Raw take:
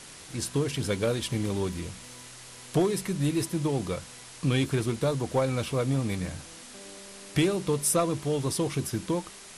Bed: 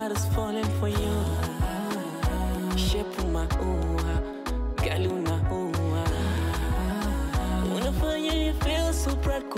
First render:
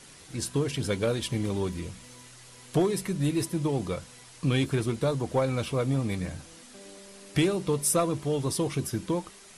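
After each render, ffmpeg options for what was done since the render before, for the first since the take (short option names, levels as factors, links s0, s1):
-af "afftdn=nr=6:nf=-47"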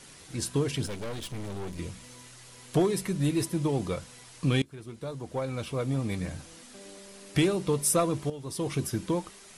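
-filter_complex "[0:a]asettb=1/sr,asplit=3[s0][s1][s2];[s0]atrim=end=0.864[s3];[s1]atrim=start=0.86:end=1.79,asetpts=PTS-STARTPTS,afade=t=in:d=0.004:c=qsin,afade=t=out:st=0.926:d=0.004:c=qsin,aeval=exprs='(tanh(50.1*val(0)+0.75)-tanh(0.75))/50.1':c=same[s4];[s2]atrim=start=1.786[s5];[s3][s4]acrossfade=d=0.004:c1=hsin:c2=qsin[s6];[s6][s5]acrossfade=d=0.004:c1=qsin:c2=hsin,asplit=3[s7][s8][s9];[s7]atrim=end=4.62,asetpts=PTS-STARTPTS,afade=t=out:st=4.616:d=0.004:c=hsin:silence=0.0668344[s10];[s8]atrim=start=4.62:end=8.3,asetpts=PTS-STARTPTS,afade=t=in:d=1.77:silence=0.0668344,afade=t=out:st=3.676:d=0.004:c=hsin:silence=0.223872[s11];[s9]atrim=start=8.3,asetpts=PTS-STARTPTS,afade=t=in:d=0.42:c=qua:silence=0.223872[s12];[s10][s11][s12]concat=n=3:v=0:a=1"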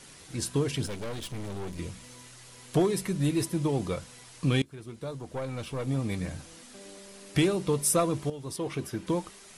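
-filter_complex "[0:a]asettb=1/sr,asplit=3[s0][s1][s2];[s0]atrim=end=5.174[s3];[s1]atrim=start=5.17:end=5.87,asetpts=PTS-STARTPTS,afade=t=in:d=0.004:c=qsin,afade=t=out:st=0.696:d=0.004:c=qsin,aeval=exprs='(tanh(20*val(0)+0.35)-tanh(0.35))/20':c=same[s4];[s2]atrim=start=5.866[s5];[s3][s4]acrossfade=d=0.004:c1=hsin:c2=qsin[s6];[s6][s5]acrossfade=d=0.004:c1=qsin:c2=hsin,asettb=1/sr,asplit=3[s7][s8][s9];[s7]atrim=end=8.564[s10];[s8]atrim=start=8.56:end=9.07,asetpts=PTS-STARTPTS,afade=t=in:d=0.004:c=qsin,afade=t=out:st=0.506:d=0.004:c=qsin,bass=f=250:g=-6,treble=f=4000:g=-8[s11];[s9]atrim=start=9.066[s12];[s10][s11]acrossfade=d=0.004:c1=hsin:c2=qsin[s13];[s13][s12]acrossfade=d=0.004:c1=qsin:c2=hsin"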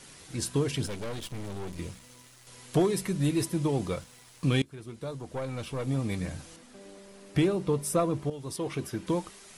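-filter_complex "[0:a]asettb=1/sr,asplit=3[s0][s1][s2];[s0]atrim=end=1.194[s3];[s1]atrim=start=1.19:end=2.47,asetpts=PTS-STARTPTS,afade=t=in:d=0.004:c=qsin,afade=t=out:st=1.276:d=0.004:c=qsin,aeval=exprs='sgn(val(0))*max(abs(val(0))-0.00211,0)':c=same[s4];[s2]atrim=start=2.466[s5];[s3][s4]acrossfade=d=0.004:c1=hsin:c2=qsin[s6];[s6][s5]acrossfade=d=0.004:c1=qsin:c2=hsin,asettb=1/sr,asplit=3[s7][s8][s9];[s7]atrim=end=3.854[s10];[s8]atrim=start=3.85:end=4.58,asetpts=PTS-STARTPTS,afade=t=in:d=0.004:c=qsin,afade=t=out:st=0.726:d=0.004:c=qsin,aeval=exprs='sgn(val(0))*max(abs(val(0))-0.00168,0)':c=same[s11];[s9]atrim=start=4.576[s12];[s10][s11]acrossfade=d=0.004:c1=hsin:c2=qsin[s13];[s13][s12]acrossfade=d=0.004:c1=qsin:c2=hsin,asettb=1/sr,asplit=3[s14][s15][s16];[s14]atrim=end=6.564[s17];[s15]atrim=start=6.56:end=8.31,asetpts=PTS-STARTPTS,afade=t=in:d=0.004:c=qsin,afade=t=out:st=1.746:d=0.004:c=qsin,highshelf=f=2200:g=-8.5[s18];[s16]atrim=start=8.306[s19];[s17][s18]acrossfade=d=0.004:c1=hsin:c2=qsin[s20];[s20][s19]acrossfade=d=0.004:c1=qsin:c2=hsin"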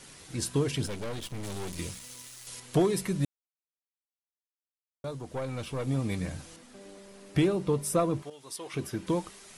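-filter_complex "[0:a]asettb=1/sr,asplit=3[s0][s1][s2];[s0]atrim=end=1.434[s3];[s1]atrim=start=1.43:end=2.6,asetpts=PTS-STARTPTS,afade=t=in:d=0.004:c=qsin,afade=t=out:st=1.166:d=0.004:c=qsin,highshelf=f=2600:g=10.5[s4];[s2]atrim=start=2.596[s5];[s3][s4]acrossfade=d=0.004:c1=hsin:c2=qsin[s6];[s6][s5]acrossfade=d=0.004:c1=qsin:c2=hsin,asettb=1/sr,asplit=3[s7][s8][s9];[s7]atrim=end=8.224[s10];[s8]atrim=start=8.22:end=8.74,asetpts=PTS-STARTPTS,afade=t=in:d=0.004:c=qsin,afade=t=out:st=0.516:d=0.004:c=qsin,highpass=f=1200:p=1[s11];[s9]atrim=start=8.736[s12];[s10][s11]acrossfade=d=0.004:c1=hsin:c2=qsin[s13];[s13][s12]acrossfade=d=0.004:c1=qsin:c2=hsin,asplit=3[s14][s15][s16];[s14]atrim=end=3.25,asetpts=PTS-STARTPTS,afade=t=out:st=3.246:d=0.004:c=hsin[s17];[s15]atrim=start=3.25:end=5.04,asetpts=PTS-STARTPTS,volume=0[s18];[s16]atrim=start=5.04,asetpts=PTS-STARTPTS,afade=t=in:d=0.004:c=hsin[s19];[s17][s18][s19]concat=n=3:v=0:a=1"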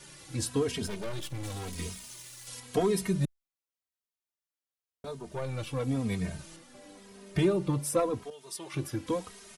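-filter_complex "[0:a]asplit=2[s0][s1];[s1]asoftclip=type=tanh:threshold=0.0668,volume=0.355[s2];[s0][s2]amix=inputs=2:normalize=0,asplit=2[s3][s4];[s4]adelay=2.9,afreqshift=-0.93[s5];[s3][s5]amix=inputs=2:normalize=1"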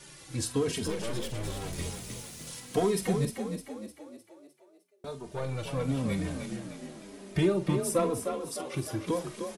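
-filter_complex "[0:a]asplit=2[s0][s1];[s1]adelay=46,volume=0.251[s2];[s0][s2]amix=inputs=2:normalize=0,asplit=2[s3][s4];[s4]asplit=6[s5][s6][s7][s8][s9][s10];[s5]adelay=305,afreqshift=36,volume=0.447[s11];[s6]adelay=610,afreqshift=72,volume=0.214[s12];[s7]adelay=915,afreqshift=108,volume=0.102[s13];[s8]adelay=1220,afreqshift=144,volume=0.0495[s14];[s9]adelay=1525,afreqshift=180,volume=0.0237[s15];[s10]adelay=1830,afreqshift=216,volume=0.0114[s16];[s11][s12][s13][s14][s15][s16]amix=inputs=6:normalize=0[s17];[s3][s17]amix=inputs=2:normalize=0"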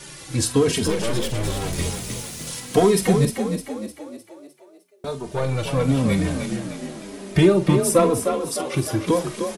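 -af "volume=3.35"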